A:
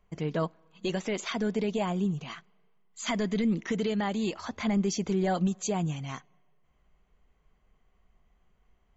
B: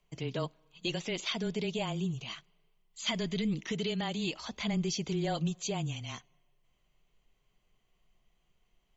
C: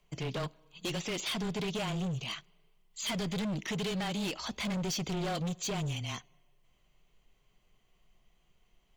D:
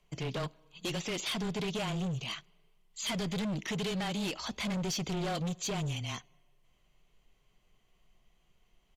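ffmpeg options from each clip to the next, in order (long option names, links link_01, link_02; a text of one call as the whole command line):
ffmpeg -i in.wav -filter_complex "[0:a]afreqshift=-17,acrossover=split=5900[link_01][link_02];[link_02]acompressor=threshold=-58dB:ratio=4:attack=1:release=60[link_03];[link_01][link_03]amix=inputs=2:normalize=0,highshelf=frequency=2200:width_type=q:width=1.5:gain=7.5,volume=-5dB" out.wav
ffmpeg -i in.wav -af "asoftclip=type=hard:threshold=-35.5dB,volume=4dB" out.wav
ffmpeg -i in.wav -af "aresample=32000,aresample=44100" out.wav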